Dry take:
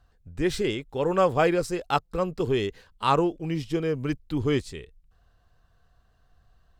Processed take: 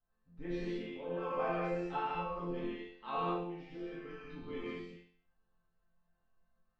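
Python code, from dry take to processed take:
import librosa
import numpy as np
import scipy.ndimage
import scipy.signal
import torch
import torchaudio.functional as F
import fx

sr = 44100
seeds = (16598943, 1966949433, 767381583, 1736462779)

y = fx.high_shelf(x, sr, hz=5600.0, db=-7.5)
y = fx.hpss(y, sr, part='harmonic', gain_db=-12)
y = fx.air_absorb(y, sr, metres=210.0)
y = fx.resonator_bank(y, sr, root=53, chord='major', decay_s=0.55)
y = fx.rev_gated(y, sr, seeds[0], gate_ms=260, shape='flat', drr_db=-7.0)
y = y * librosa.db_to_amplitude(3.0)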